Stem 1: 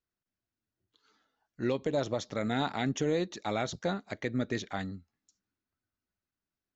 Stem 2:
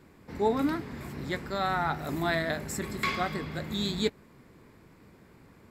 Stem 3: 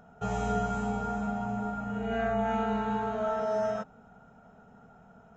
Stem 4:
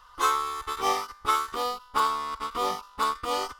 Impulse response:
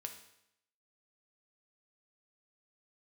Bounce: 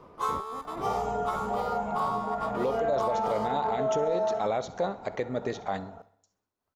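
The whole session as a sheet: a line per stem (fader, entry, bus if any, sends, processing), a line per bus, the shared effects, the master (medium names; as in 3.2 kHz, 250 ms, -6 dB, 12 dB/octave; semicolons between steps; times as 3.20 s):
+1.5 dB, 0.95 s, bus B, send -12.5 dB, echo send -24 dB, none
-3.5 dB, 0.00 s, bus A, no send, no echo send, comb filter that takes the minimum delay 0.36 ms; low-pass 1.9 kHz; compressor with a negative ratio -36 dBFS, ratio -0.5
+3.0 dB, 0.65 s, bus A, no send, echo send -17.5 dB, reverb removal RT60 0.55 s
-12.0 dB, 0.00 s, bus B, send -8 dB, no echo send, none
bus A: 0.0 dB, compression, threshold -34 dBFS, peak gain reduction 11.5 dB
bus B: 0.0 dB, tremolo 3.3 Hz, depth 55%; compression 1.5:1, threshold -40 dBFS, peak gain reduction 5.5 dB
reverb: on, RT60 0.80 s, pre-delay 4 ms
echo: feedback delay 65 ms, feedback 49%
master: high-order bell 690 Hz +10.5 dB; peak limiter -19 dBFS, peak gain reduction 7.5 dB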